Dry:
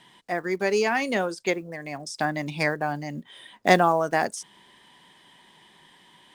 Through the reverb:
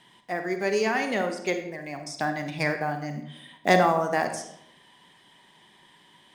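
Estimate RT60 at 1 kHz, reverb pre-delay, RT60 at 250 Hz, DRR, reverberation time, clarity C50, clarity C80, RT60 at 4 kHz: 0.65 s, 37 ms, 0.90 s, 6.0 dB, 0.70 s, 8.0 dB, 11.0 dB, 0.55 s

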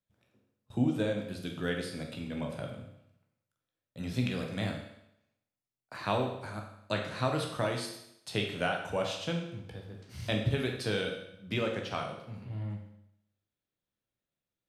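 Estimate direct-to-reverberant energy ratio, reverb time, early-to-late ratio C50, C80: 1.0 dB, 0.80 s, 5.0 dB, 8.0 dB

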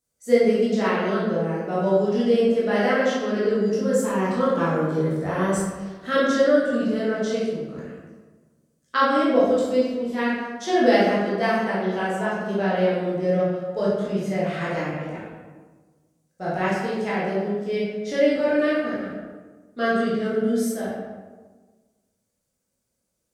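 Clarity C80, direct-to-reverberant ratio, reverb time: 2.0 dB, -9.0 dB, 1.4 s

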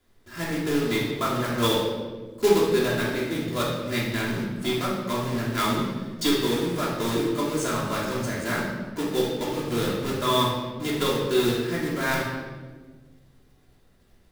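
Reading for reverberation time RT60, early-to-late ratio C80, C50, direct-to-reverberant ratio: 1.5 s, 4.0 dB, 1.5 dB, -6.0 dB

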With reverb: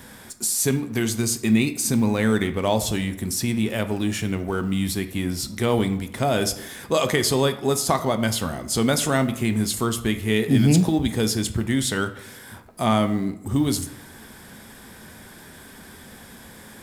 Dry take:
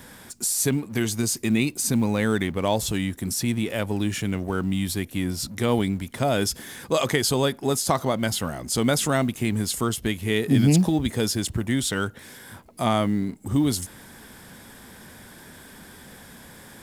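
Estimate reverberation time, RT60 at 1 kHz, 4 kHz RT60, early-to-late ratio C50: 0.80 s, 0.80 s, 0.50 s, 12.5 dB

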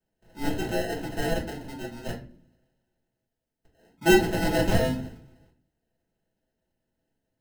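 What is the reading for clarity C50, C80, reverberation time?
10.0 dB, 15.5 dB, not exponential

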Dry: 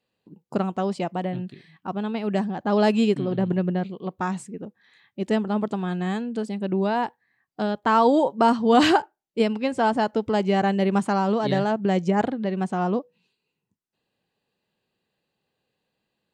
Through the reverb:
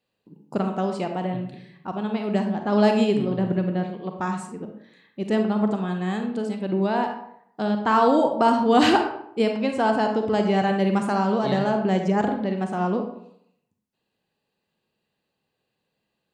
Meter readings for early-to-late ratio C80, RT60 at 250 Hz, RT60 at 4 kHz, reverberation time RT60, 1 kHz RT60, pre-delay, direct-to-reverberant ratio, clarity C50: 9.5 dB, 0.75 s, 0.45 s, 0.70 s, 0.70 s, 34 ms, 4.5 dB, 6.0 dB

